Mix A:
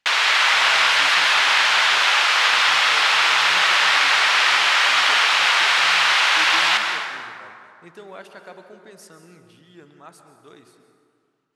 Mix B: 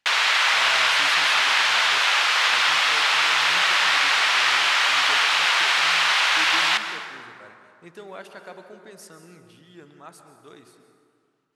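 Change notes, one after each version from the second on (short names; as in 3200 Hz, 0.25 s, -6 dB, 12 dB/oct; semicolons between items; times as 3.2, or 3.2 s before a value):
background: send -7.5 dB; master: add high shelf 11000 Hz +3.5 dB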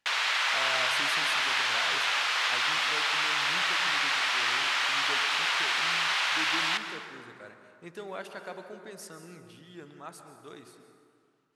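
background -8.0 dB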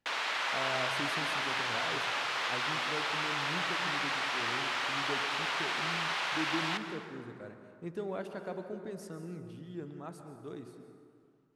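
master: add tilt shelf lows +8.5 dB, about 670 Hz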